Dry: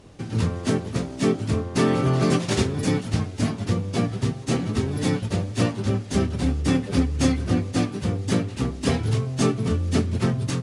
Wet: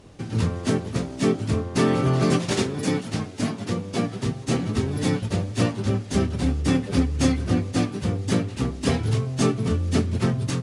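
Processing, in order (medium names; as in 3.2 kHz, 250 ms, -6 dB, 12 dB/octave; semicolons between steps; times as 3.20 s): 2.51–4.26 s: high-pass 150 Hz 12 dB/octave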